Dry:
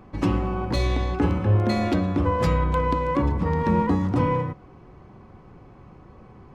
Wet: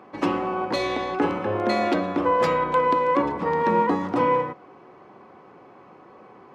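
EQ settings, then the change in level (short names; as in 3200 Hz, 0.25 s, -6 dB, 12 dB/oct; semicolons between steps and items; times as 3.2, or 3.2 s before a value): HPF 380 Hz 12 dB/oct; high shelf 4900 Hz -10 dB; +5.5 dB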